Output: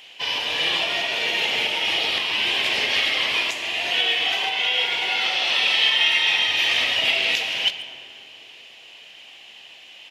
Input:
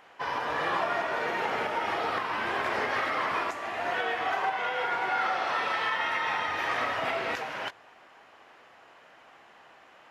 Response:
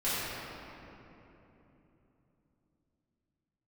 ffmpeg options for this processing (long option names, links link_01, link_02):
-filter_complex "[0:a]highshelf=frequency=2000:width_type=q:width=3:gain=13.5,asplit=2[link_01][link_02];[link_02]adelay=140,highpass=300,lowpass=3400,asoftclip=type=hard:threshold=-16.5dB,volume=-15dB[link_03];[link_01][link_03]amix=inputs=2:normalize=0,asplit=2[link_04][link_05];[1:a]atrim=start_sample=2205,asetrate=57330,aresample=44100,adelay=9[link_06];[link_05][link_06]afir=irnorm=-1:irlink=0,volume=-18dB[link_07];[link_04][link_07]amix=inputs=2:normalize=0"